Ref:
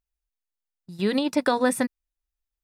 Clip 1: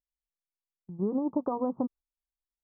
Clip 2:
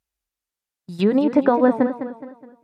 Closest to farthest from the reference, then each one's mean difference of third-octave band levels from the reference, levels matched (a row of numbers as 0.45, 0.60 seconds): 2, 1; 7.5, 10.5 decibels